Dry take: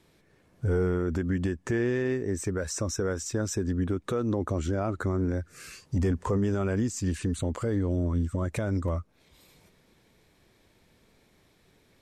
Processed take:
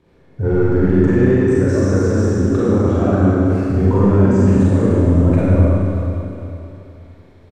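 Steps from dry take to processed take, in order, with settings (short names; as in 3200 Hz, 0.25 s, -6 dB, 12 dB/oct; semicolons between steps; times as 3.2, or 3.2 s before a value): LPF 1000 Hz 6 dB/oct; de-hum 234.7 Hz, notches 3; tempo 1.6×; in parallel at -9 dB: hard clip -26 dBFS, distortion -13 dB; on the sum: Schroeder reverb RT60 3 s, combs from 32 ms, DRR -9 dB; gain +4 dB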